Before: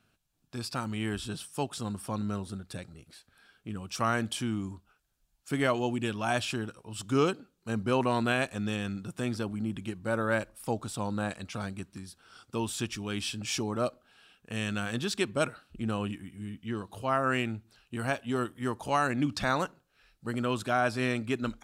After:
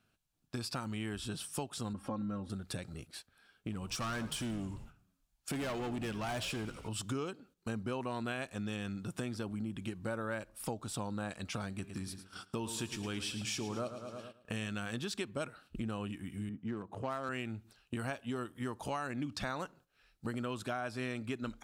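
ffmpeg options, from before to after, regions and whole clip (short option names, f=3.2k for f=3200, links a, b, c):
-filter_complex "[0:a]asettb=1/sr,asplit=3[a][b][c];[a]atrim=end=1.934[d];[b]atrim=start=1.93:end=2.5,asetpts=PTS-STARTPTS,afade=t=in:d=0.004:c=qsin,afade=t=out:st=0.566:d=0.004:c=qsin,lowpass=f=1.1k:p=1,aecho=1:1:3.7:0.72,atrim=end_sample=25137,acompressor=mode=upward:threshold=-45dB:ratio=2.5:attack=3.2:release=140:knee=2.83:detection=peak[e];[c]atrim=start=2.496[f];[d][e]acrossfade=d=0.004:c1=hsin:c2=qsin[g];[g][f]acrossfade=d=0.004:c1=qsin:c2=hsin,asettb=1/sr,asplit=3[h][i][j];[h]atrim=end=3.724[k];[i]atrim=start=3.72:end=6.89,asetpts=PTS-STARTPTS,afade=t=in:d=0.004:c=qsin,afade=t=out:st=3.166:d=0.004:c=qsin,volume=31dB,asoftclip=hard,volume=-31dB,asplit=6[l][m][n][o][p][q];[m]adelay=88,afreqshift=-74,volume=-15dB[r];[n]adelay=176,afreqshift=-148,volume=-20.5dB[s];[o]adelay=264,afreqshift=-222,volume=-26dB[t];[p]adelay=352,afreqshift=-296,volume=-31.5dB[u];[q]adelay=440,afreqshift=-370,volume=-37.1dB[v];[l][r][s][t][u][v]amix=inputs=6:normalize=0,atrim=end_sample=139797[w];[j]atrim=start=6.886[x];[k][w]acrossfade=d=0.004:c1=hsin:c2=qsin[y];[y][x]acrossfade=d=0.004:c1=qsin:c2=hsin,asettb=1/sr,asplit=3[z][aa][ab];[z]atrim=end=11.684[ac];[aa]atrim=start=11.68:end=14.67,asetpts=PTS-STARTPTS,afade=t=in:d=0.004:c=qsin,afade=t=out:st=2.986:d=0.004:c=qsin,agate=range=-11dB:threshold=-59dB:ratio=16:release=100:detection=peak,bandreject=f=132.1:t=h:w=4,bandreject=f=264.2:t=h:w=4,bandreject=f=396.3:t=h:w=4,bandreject=f=528.4:t=h:w=4,bandreject=f=660.5:t=h:w=4,bandreject=f=792.6:t=h:w=4,bandreject=f=924.7:t=h:w=4,bandreject=f=1.0568k:t=h:w=4,bandreject=f=1.1889k:t=h:w=4,bandreject=f=1.321k:t=h:w=4,bandreject=f=1.4531k:t=h:w=4,bandreject=f=1.5852k:t=h:w=4,bandreject=f=1.7173k:t=h:w=4,bandreject=f=1.8494k:t=h:w=4,bandreject=f=1.9815k:t=h:w=4,bandreject=f=2.1136k:t=h:w=4,bandreject=f=2.2457k:t=h:w=4,bandreject=f=2.3778k:t=h:w=4,bandreject=f=2.5099k:t=h:w=4,bandreject=f=2.642k:t=h:w=4,bandreject=f=2.7741k:t=h:w=4,bandreject=f=2.9062k:t=h:w=4,bandreject=f=3.0383k:t=h:w=4,bandreject=f=3.1704k:t=h:w=4,bandreject=f=3.3025k:t=h:w=4,bandreject=f=3.4346k:t=h:w=4,bandreject=f=3.5667k:t=h:w=4,bandreject=f=3.6988k:t=h:w=4,bandreject=f=3.8309k:t=h:w=4,bandreject=f=3.963k:t=h:w=4,bandreject=f=4.0951k:t=h:w=4,bandreject=f=4.2272k:t=h:w=4,bandreject=f=4.3593k:t=h:w=4,aecho=1:1:110|220|330|440|550|660:0.251|0.138|0.076|0.0418|0.023|0.0126,atrim=end_sample=131859[ad];[ab]atrim=start=14.666[ae];[ac][ad]acrossfade=d=0.004:c1=hsin:c2=qsin[af];[af][ae]acrossfade=d=0.004:c1=qsin:c2=hsin,asettb=1/sr,asplit=3[ag][ah][ai];[ag]atrim=end=16.494[aj];[ah]atrim=start=16.49:end=17.29,asetpts=PTS-STARTPTS,afade=t=in:d=0.004:c=qsin,afade=t=out:st=0.796:d=0.004:c=qsin,highpass=120,highshelf=f=5.6k:t=q:w=1.5:g=12,adynamicsmooth=sensitivity=4:basefreq=1.2k[ak];[ai]atrim=start=17.286[al];[aj][ak]acrossfade=d=0.004:c1=hsin:c2=qsin[am];[am][al]acrossfade=d=0.004:c1=qsin:c2=hsin,agate=range=-11dB:threshold=-53dB:ratio=16:detection=peak,acompressor=threshold=-43dB:ratio=5,volume=6dB"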